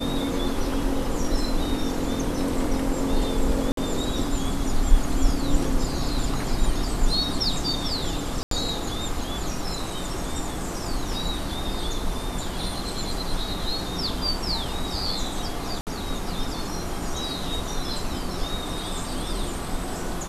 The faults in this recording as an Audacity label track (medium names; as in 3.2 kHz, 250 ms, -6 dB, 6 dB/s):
3.720000	3.770000	dropout 53 ms
8.430000	8.510000	dropout 83 ms
15.810000	15.870000	dropout 58 ms